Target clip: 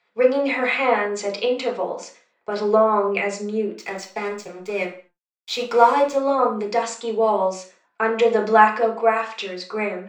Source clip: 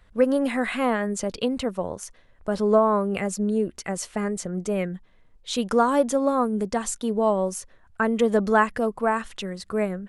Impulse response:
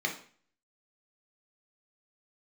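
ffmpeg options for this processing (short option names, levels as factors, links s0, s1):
-filter_complex "[0:a]highpass=450,agate=range=0.398:threshold=0.00316:ratio=16:detection=peak,lowpass=f=6200:w=0.5412,lowpass=f=6200:w=1.3066,asettb=1/sr,asplit=3[s0][s1][s2];[s0]atrim=end=3.724[s3];[s1]atrim=start=3.72:end=6.16,asetpts=PTS-STARTPTS,afade=t=in:d=0.004:c=qsin,afade=t=out:st=2.436:d=0.004:c=qsin,aeval=exprs='sgn(val(0))*max(abs(val(0))-0.00891,0)':c=same[s4];[s2]atrim=start=6.156[s5];[s3][s4]acrossfade=d=0.004:c1=hsin:c2=qsin[s6];[s6][s5]acrossfade=d=0.004:c1=qsin:c2=hsin[s7];[1:a]atrim=start_sample=2205,afade=t=out:st=0.33:d=0.01,atrim=end_sample=14994,asetrate=48510,aresample=44100[s8];[s7][s8]afir=irnorm=-1:irlink=0,volume=1.19"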